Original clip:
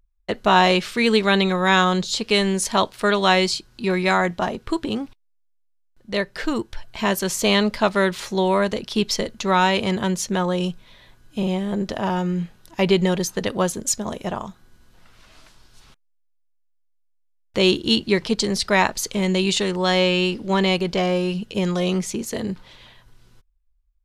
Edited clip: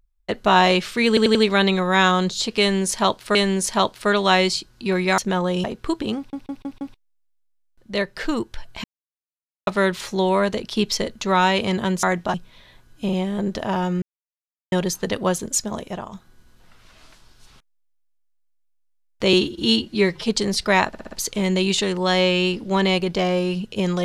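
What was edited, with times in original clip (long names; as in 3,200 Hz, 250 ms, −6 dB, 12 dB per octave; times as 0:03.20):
0:01.08: stutter 0.09 s, 4 plays
0:02.33–0:03.08: repeat, 2 plays
0:04.16–0:04.47: swap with 0:10.22–0:10.68
0:05.00: stutter 0.16 s, 5 plays
0:07.03–0:07.86: silence
0:12.36–0:13.06: silence
0:14.04–0:14.46: fade out, to −7 dB
0:17.67–0:18.30: time-stretch 1.5×
0:18.90: stutter 0.06 s, 5 plays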